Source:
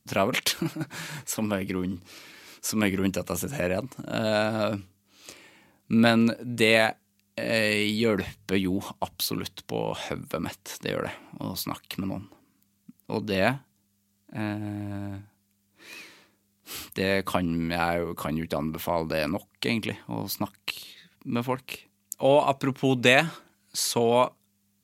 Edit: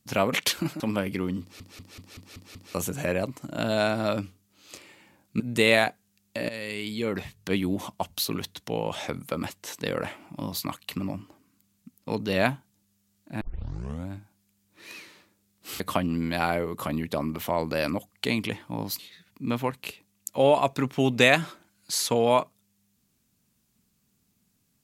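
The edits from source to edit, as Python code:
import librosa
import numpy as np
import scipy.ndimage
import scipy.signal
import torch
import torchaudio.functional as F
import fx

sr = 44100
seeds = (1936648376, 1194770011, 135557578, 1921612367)

y = fx.edit(x, sr, fx.cut(start_s=0.8, length_s=0.55),
    fx.stutter_over(start_s=1.96, slice_s=0.19, count=7),
    fx.cut(start_s=5.95, length_s=0.47),
    fx.fade_in_from(start_s=7.51, length_s=1.22, floor_db=-14.5),
    fx.tape_start(start_s=14.43, length_s=0.69),
    fx.cut(start_s=16.82, length_s=0.37),
    fx.cut(start_s=20.38, length_s=0.46), tone=tone)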